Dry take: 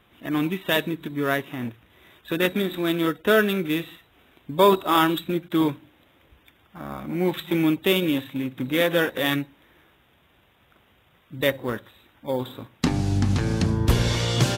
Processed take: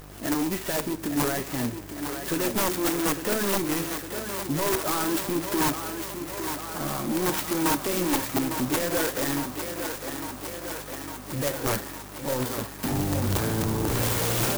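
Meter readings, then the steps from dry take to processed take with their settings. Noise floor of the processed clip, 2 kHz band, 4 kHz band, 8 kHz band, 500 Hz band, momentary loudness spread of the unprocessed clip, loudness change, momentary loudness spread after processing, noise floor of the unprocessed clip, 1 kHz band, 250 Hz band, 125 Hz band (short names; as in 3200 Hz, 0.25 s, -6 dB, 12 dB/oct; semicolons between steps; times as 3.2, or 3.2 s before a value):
-40 dBFS, -4.5 dB, -3.5 dB, +9.5 dB, -4.5 dB, 14 LU, -3.5 dB, 9 LU, -61 dBFS, -2.5 dB, -3.0 dB, -5.0 dB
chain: tone controls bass -6 dB, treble +2 dB; in parallel at -1 dB: compressor, threshold -35 dBFS, peak gain reduction 21 dB; on the sum: limiter -14.5 dBFS, peak gain reduction 11 dB; buzz 50 Hz, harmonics 36, -49 dBFS -5 dB/oct; soft clip -27 dBFS, distortion -9 dB; flange 1.3 Hz, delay 6.1 ms, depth 5.1 ms, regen +54%; wrapped overs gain 28.5 dB; on a send: thinning echo 0.855 s, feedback 77%, high-pass 210 Hz, level -7.5 dB; on the sum: clock jitter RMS 0.089 ms; gain +8.5 dB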